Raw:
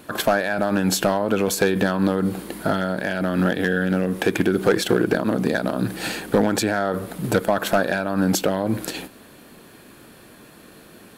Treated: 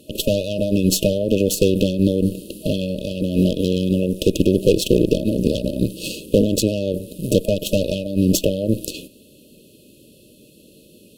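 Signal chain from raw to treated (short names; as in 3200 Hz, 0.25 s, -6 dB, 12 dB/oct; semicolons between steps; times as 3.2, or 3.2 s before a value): added harmonics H 2 -11 dB, 6 -23 dB, 7 -24 dB, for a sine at -8.5 dBFS; FFT band-reject 630–2500 Hz; gain +3.5 dB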